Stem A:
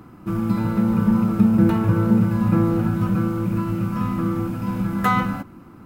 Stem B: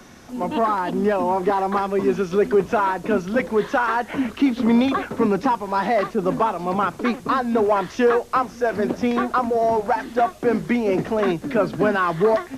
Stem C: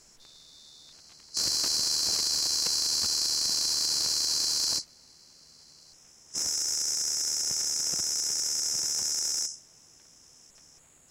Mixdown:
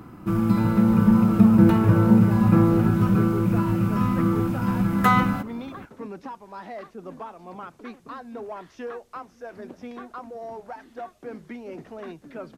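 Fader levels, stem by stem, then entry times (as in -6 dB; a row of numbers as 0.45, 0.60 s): +1.0 dB, -17.5 dB, off; 0.00 s, 0.80 s, off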